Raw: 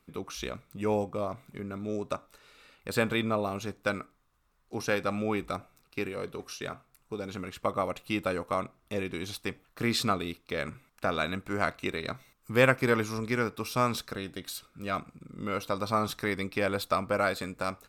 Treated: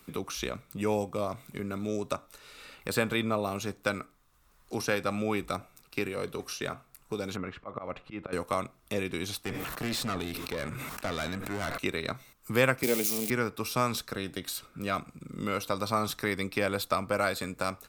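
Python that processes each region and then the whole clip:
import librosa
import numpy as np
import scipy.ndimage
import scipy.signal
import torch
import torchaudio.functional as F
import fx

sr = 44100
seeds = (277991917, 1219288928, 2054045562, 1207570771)

y = fx.chain(x, sr, fx.cheby1_lowpass(hz=1700.0, order=2),
    fx.auto_swell(attack_ms=218.0), at=(7.36, 8.33))
y = fx.chain(y, sr, fx.highpass(hz=51.0, slope=12),
    fx.tube_stage(drive_db=30.0, bias=0.6),
    fx.sustainer(db_per_s=30.0), at=(9.43, 11.78))
y = fx.chain(y, sr, fx.crossing_spikes(level_db=-20.5),
    fx.highpass(hz=170.0, slope=24),
    fx.band_shelf(hz=1300.0, db=-12.0, octaves=1.1), at=(12.83, 13.3))
y = fx.high_shelf(y, sr, hz=5600.0, db=6.0)
y = fx.band_squash(y, sr, depth_pct=40)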